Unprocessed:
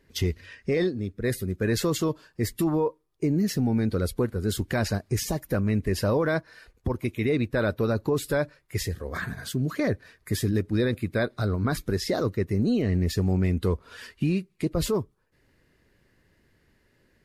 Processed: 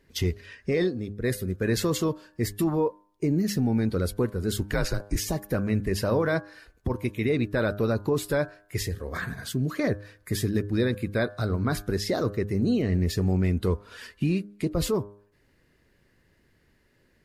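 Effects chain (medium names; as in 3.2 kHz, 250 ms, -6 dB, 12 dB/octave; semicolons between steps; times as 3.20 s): 4.71–5.16 s: frequency shift -82 Hz; de-hum 102 Hz, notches 17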